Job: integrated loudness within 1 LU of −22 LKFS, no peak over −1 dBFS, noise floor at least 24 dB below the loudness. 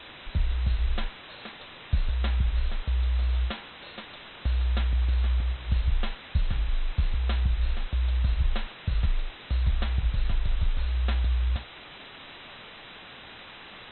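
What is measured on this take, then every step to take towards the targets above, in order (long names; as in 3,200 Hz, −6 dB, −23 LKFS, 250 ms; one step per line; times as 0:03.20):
background noise floor −46 dBFS; target noise floor −54 dBFS; integrated loudness −29.5 LKFS; sample peak −13.0 dBFS; target loudness −22.0 LKFS
→ noise reduction from a noise print 8 dB
level +7.5 dB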